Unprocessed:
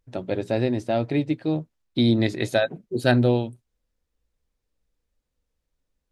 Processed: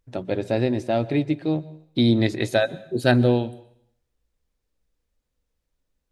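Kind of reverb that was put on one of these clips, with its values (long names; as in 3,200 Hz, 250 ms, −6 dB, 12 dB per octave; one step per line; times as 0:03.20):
dense smooth reverb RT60 0.67 s, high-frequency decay 1×, pre-delay 110 ms, DRR 19.5 dB
level +1 dB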